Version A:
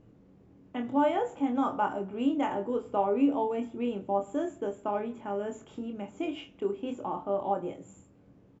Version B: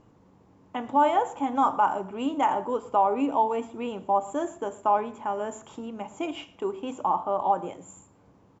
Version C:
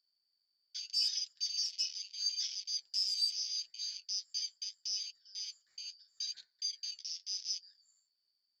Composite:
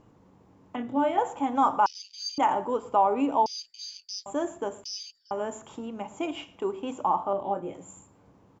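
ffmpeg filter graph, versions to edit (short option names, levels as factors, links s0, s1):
-filter_complex "[0:a]asplit=2[s0][s1];[2:a]asplit=3[s2][s3][s4];[1:a]asplit=6[s5][s6][s7][s8][s9][s10];[s5]atrim=end=0.762[s11];[s0]atrim=start=0.758:end=1.182[s12];[s6]atrim=start=1.178:end=1.862[s13];[s2]atrim=start=1.858:end=2.382[s14];[s7]atrim=start=2.378:end=3.462[s15];[s3]atrim=start=3.458:end=4.262[s16];[s8]atrim=start=4.258:end=4.842[s17];[s4]atrim=start=4.838:end=5.312[s18];[s9]atrim=start=5.308:end=7.332[s19];[s1]atrim=start=7.328:end=7.742[s20];[s10]atrim=start=7.738[s21];[s11][s12]acrossfade=d=0.004:c1=hsin:c2=hsin[s22];[s22][s13]acrossfade=d=0.004:c1=hsin:c2=hsin[s23];[s23][s14]acrossfade=d=0.004:c1=hsin:c2=hsin[s24];[s24][s15]acrossfade=d=0.004:c1=hsin:c2=hsin[s25];[s25][s16]acrossfade=d=0.004:c1=hsin:c2=hsin[s26];[s26][s17]acrossfade=d=0.004:c1=hsin:c2=hsin[s27];[s27][s18]acrossfade=d=0.004:c1=hsin:c2=hsin[s28];[s28][s19]acrossfade=d=0.004:c1=hsin:c2=hsin[s29];[s29][s20]acrossfade=d=0.004:c1=hsin:c2=hsin[s30];[s30][s21]acrossfade=d=0.004:c1=hsin:c2=hsin"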